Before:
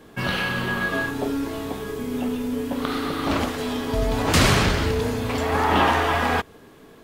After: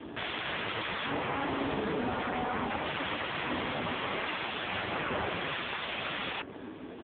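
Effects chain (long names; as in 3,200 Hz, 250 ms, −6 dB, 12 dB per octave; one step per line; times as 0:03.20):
wrap-around overflow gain 15 dB
treble cut that deepens with the level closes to 1,900 Hz, closed at −20 dBFS
comb filter 3.3 ms, depth 32%
wave folding −30.5 dBFS
level +7.5 dB
AMR narrowband 5.15 kbit/s 8,000 Hz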